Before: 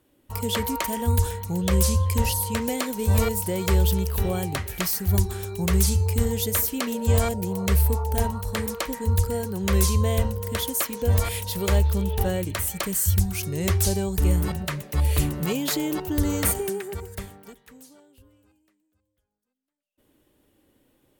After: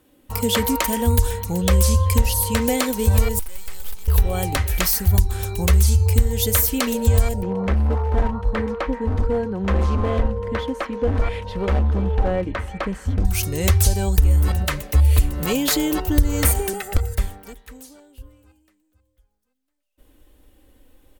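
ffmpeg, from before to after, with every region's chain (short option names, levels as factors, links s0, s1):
-filter_complex "[0:a]asettb=1/sr,asplit=3[s0][s1][s2];[s0]atrim=end=3.394[s3];[s1]atrim=start=3.39:end=4.08,asetpts=PTS-STARTPTS,afade=t=in:d=0.004:c=qsin,afade=t=out:st=0.686:d=0.004:c=qsin,acrossover=split=2700[s4][s5];[s5]acompressor=threshold=0.0112:ratio=4:attack=1:release=60[s6];[s4][s6]amix=inputs=2:normalize=0,aderivative,aeval=exprs='max(val(0),0)':c=same[s7];[s2]atrim=start=4.076[s8];[s3][s7]acrossfade=d=0.004:c1=hsin:c2=qsin[s9];[s9][s8]acrossfade=d=0.004:c1=qsin:c2=hsin,asettb=1/sr,asplit=3[s10][s11][s12];[s10]atrim=end=7.424[s13];[s11]atrim=start=7.42:end=13.25,asetpts=PTS-STARTPTS,afade=t=in:d=0.004:c=qsin,afade=t=out:st=5.826:d=0.004:c=qsin,lowpass=1800,asoftclip=type=hard:threshold=0.0891,lowshelf=f=140:t=q:w=1.5:g=-7[s14];[s12]atrim=start=13.246[s15];[s13][s14]acrossfade=d=0.004:c1=hsin:c2=qsin[s16];[s16][s15]acrossfade=d=0.004:c1=qsin:c2=hsin,asettb=1/sr,asplit=3[s17][s18][s19];[s17]atrim=end=16.734[s20];[s18]atrim=start=16.73:end=17.13,asetpts=PTS-STARTPTS,afade=t=in:d=0.004:c=qsin,afade=t=out:st=0.396:d=0.004:c=qsin,aecho=1:1:1.5:0.82,atrim=end_sample=17640,aeval=exprs='(mod(10*val(0)+1,2)-1)/10':c=same[s21];[s19]atrim=start=17.126[s22];[s20][s21]acrossfade=d=0.004:c1=hsin:c2=qsin[s23];[s23][s22]acrossfade=d=0.004:c1=qsin:c2=hsin,asubboost=boost=9:cutoff=52,aecho=1:1:3.9:0.32,acompressor=threshold=0.126:ratio=5,volume=2"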